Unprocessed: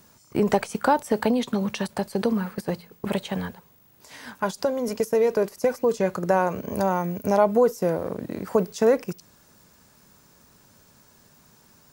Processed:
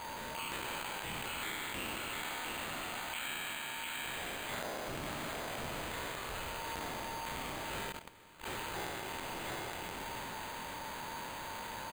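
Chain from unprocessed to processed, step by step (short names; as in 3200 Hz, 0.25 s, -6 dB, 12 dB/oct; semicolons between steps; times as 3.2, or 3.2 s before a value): spectral trails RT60 2.10 s; steep high-pass 2800 Hz 36 dB/oct; echo 0.704 s -7 dB; careless resampling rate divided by 8×, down none, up hold; compressor 10:1, threshold -50 dBFS, peak gain reduction 21.5 dB; transient shaper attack -8 dB, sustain +3 dB; 7.92–8.46 level quantiser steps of 18 dB; gain +13 dB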